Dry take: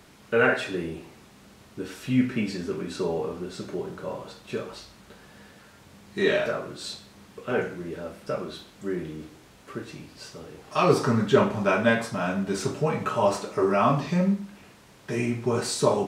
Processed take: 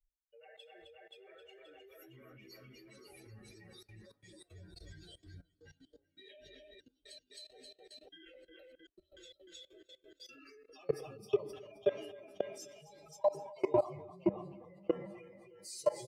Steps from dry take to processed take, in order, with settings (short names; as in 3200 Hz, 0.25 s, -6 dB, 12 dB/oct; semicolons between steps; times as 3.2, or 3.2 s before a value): per-bin expansion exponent 3; high shelf 7000 Hz +6.5 dB; fixed phaser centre 590 Hz, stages 4; multi-head echo 0.264 s, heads first and second, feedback 43%, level -7 dB; reverb RT60 1.7 s, pre-delay 4 ms, DRR 13 dB; 6.78–9.06 step gate "xxx..x.x..x.xxx" 117 bpm -60 dB; comb 5 ms, depth 53%; compressor 2:1, threshold -51 dBFS, peak gain reduction 18.5 dB; echoes that change speed 0.778 s, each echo -3 st, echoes 2; level quantiser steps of 19 dB; three-band expander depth 100%; gain +4 dB